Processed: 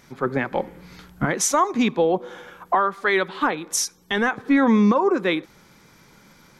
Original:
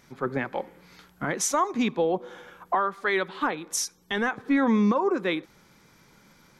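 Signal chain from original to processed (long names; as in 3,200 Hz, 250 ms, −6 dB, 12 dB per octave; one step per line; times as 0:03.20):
0:00.51–0:01.26: low-shelf EQ 230 Hz +10.5 dB
level +5 dB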